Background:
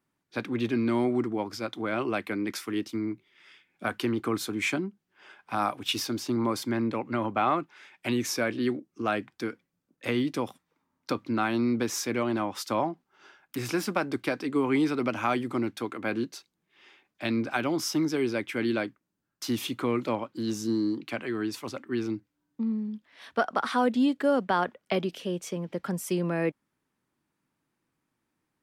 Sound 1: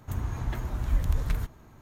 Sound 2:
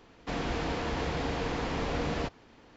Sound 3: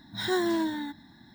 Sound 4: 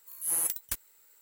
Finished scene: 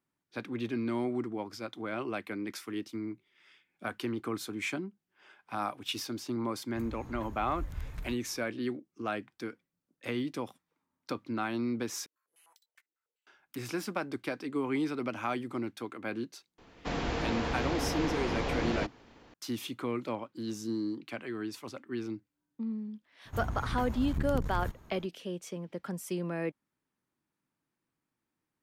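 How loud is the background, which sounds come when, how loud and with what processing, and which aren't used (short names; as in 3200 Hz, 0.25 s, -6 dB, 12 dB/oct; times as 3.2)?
background -6.5 dB
6.68 add 1 -13 dB
12.06 replace with 4 -12.5 dB + stepped band-pass 10 Hz 310–4100 Hz
16.58 add 2 -0.5 dB
23.25 add 1 -3 dB + core saturation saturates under 190 Hz
not used: 3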